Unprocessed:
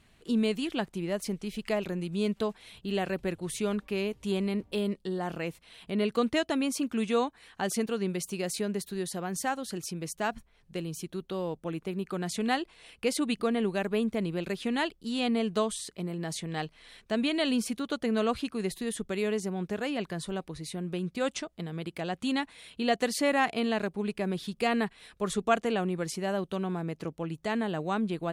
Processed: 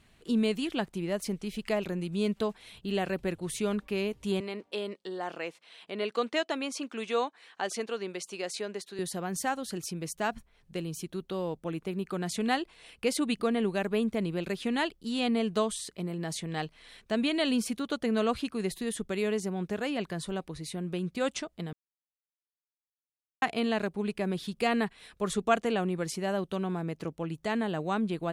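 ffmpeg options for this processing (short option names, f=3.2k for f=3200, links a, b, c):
-filter_complex "[0:a]asettb=1/sr,asplit=3[a][b][c];[a]atrim=end=4.404[d];[b]atrim=start=4.4:end=8.99,asetpts=PTS-STARTPTS,afade=t=in:d=0.004:c=qsin,afade=t=out:st=4.586:d=0.004:c=qsin,highpass=400,lowpass=7.1k[e];[c]atrim=start=8.986[f];[d][e]acrossfade=d=0.004:c1=hsin:c2=qsin[g];[g][f]acrossfade=d=0.004:c1=qsin:c2=hsin,asplit=3[h][i][j];[h]atrim=end=21.73,asetpts=PTS-STARTPTS,afade=t=out:st=21.726:d=0.004:c=hsin[k];[i]atrim=start=21.73:end=23.42,asetpts=PTS-STARTPTS,volume=0[l];[j]atrim=start=23.42,asetpts=PTS-STARTPTS,afade=t=in:d=0.004:c=hsin[m];[k][l][m]concat=n=3:v=0:a=1"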